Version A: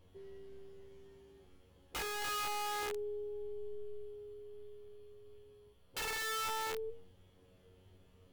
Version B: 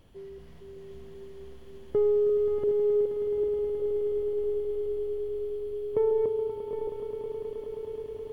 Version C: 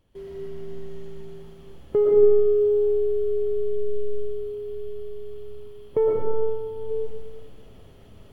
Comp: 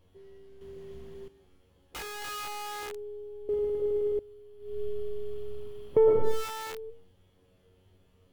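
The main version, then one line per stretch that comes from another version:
A
0.61–1.28 s: from B
3.49–4.19 s: from B
4.70–6.34 s: from C, crossfade 0.24 s

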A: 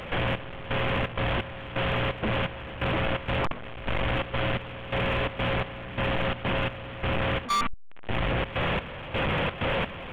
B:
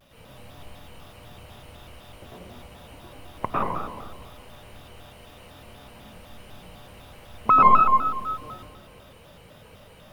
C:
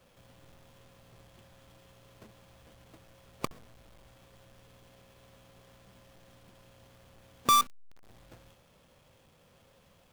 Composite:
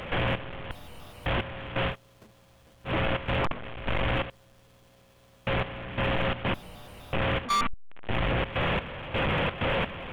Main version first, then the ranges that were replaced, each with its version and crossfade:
A
0.71–1.26 s: from B
1.91–2.89 s: from C, crossfade 0.10 s
4.30–5.47 s: from C
6.54–7.13 s: from B

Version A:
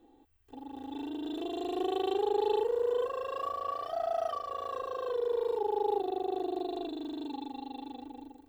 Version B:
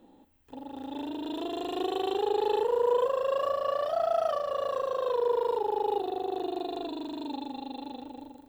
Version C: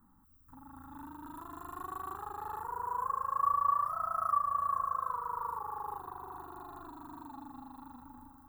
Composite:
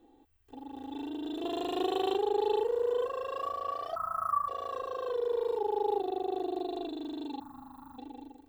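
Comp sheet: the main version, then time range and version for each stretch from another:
A
1.44–2.16 s: from B
3.96–4.48 s: from C
7.40–7.98 s: from C

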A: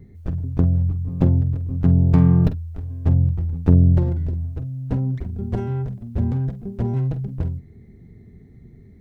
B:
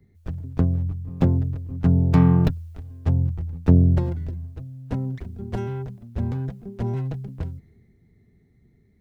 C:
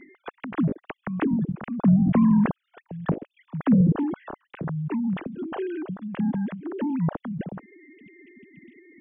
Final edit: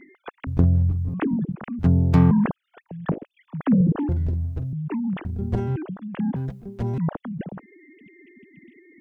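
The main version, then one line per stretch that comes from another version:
C
0.47–1.14 s: from A
1.79–2.31 s: from B
4.09–4.73 s: from A
5.25–5.76 s: from A
6.36–6.98 s: from B

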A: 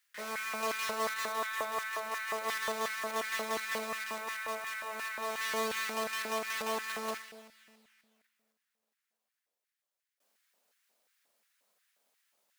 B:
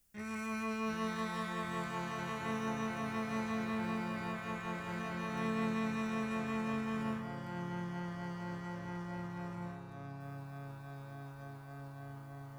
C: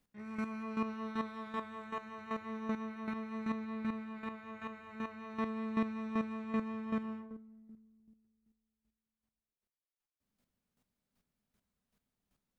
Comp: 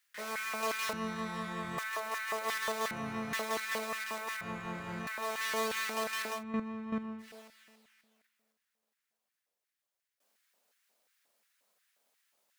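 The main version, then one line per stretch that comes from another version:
A
0.93–1.78 s: from B
2.91–3.33 s: from B
4.41–5.07 s: from B
6.36–7.26 s: from C, crossfade 0.16 s

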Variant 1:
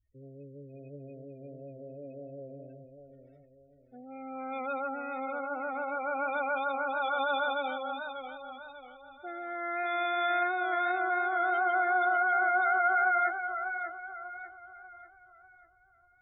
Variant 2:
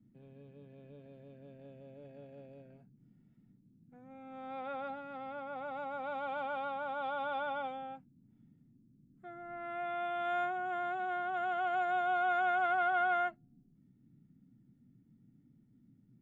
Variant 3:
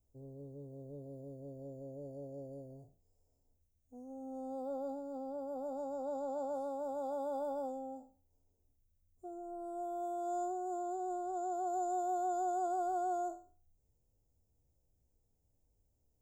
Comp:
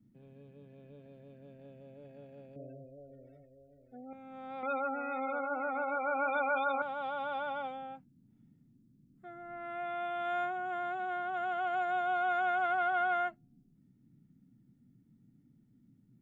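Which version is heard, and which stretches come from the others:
2
2.56–4.13 s: from 1
4.63–6.82 s: from 1
not used: 3

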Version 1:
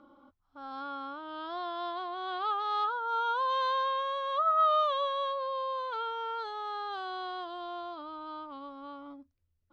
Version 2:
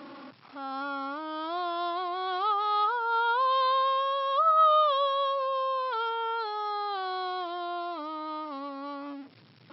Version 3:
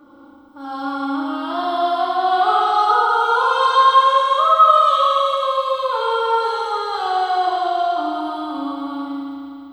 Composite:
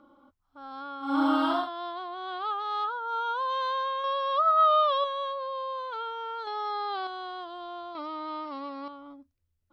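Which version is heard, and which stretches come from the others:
1
1.12–1.58 s: from 3, crossfade 0.24 s
4.04–5.04 s: from 2
6.47–7.07 s: from 2
7.95–8.88 s: from 2

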